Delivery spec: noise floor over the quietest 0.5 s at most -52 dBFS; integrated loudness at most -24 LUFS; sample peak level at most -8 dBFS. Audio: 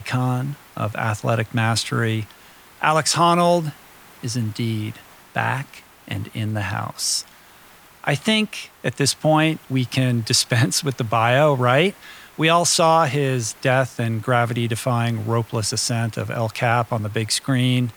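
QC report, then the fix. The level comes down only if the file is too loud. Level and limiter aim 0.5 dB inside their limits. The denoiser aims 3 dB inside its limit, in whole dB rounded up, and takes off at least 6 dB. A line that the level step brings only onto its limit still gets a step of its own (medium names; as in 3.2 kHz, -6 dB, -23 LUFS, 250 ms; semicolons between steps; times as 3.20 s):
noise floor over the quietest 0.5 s -48 dBFS: fail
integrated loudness -20.5 LUFS: fail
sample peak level -4.5 dBFS: fail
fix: noise reduction 6 dB, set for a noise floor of -48 dBFS; trim -4 dB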